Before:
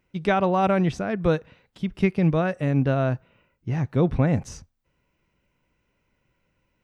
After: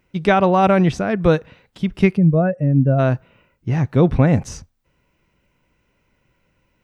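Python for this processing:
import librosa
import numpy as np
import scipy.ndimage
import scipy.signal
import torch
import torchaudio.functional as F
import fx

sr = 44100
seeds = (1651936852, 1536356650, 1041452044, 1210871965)

y = fx.spec_expand(x, sr, power=1.8, at=(2.16, 2.98), fade=0.02)
y = y * 10.0 ** (6.5 / 20.0)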